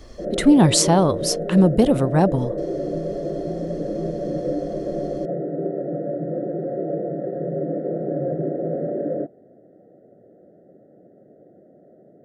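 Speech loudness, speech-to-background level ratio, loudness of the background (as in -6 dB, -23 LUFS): -17.5 LUFS, 9.0 dB, -26.5 LUFS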